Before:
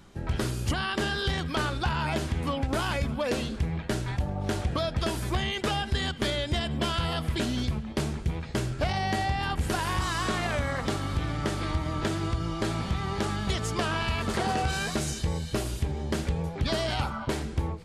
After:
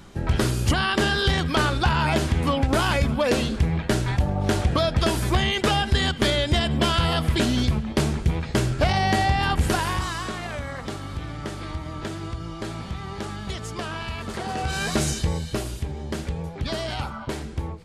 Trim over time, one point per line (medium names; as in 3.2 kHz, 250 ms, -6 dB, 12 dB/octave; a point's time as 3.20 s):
9.65 s +7 dB
10.34 s -3 dB
14.45 s -3 dB
15.01 s +7 dB
15.81 s -0.5 dB